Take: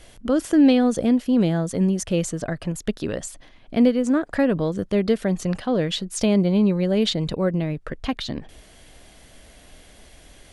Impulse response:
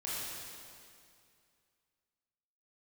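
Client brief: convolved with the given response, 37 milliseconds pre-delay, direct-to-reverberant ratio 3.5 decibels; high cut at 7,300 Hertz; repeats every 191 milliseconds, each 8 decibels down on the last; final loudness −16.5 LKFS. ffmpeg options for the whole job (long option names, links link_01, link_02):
-filter_complex "[0:a]lowpass=7300,aecho=1:1:191|382|573|764|955:0.398|0.159|0.0637|0.0255|0.0102,asplit=2[link_01][link_02];[1:a]atrim=start_sample=2205,adelay=37[link_03];[link_02][link_03]afir=irnorm=-1:irlink=0,volume=-7dB[link_04];[link_01][link_04]amix=inputs=2:normalize=0,volume=3.5dB"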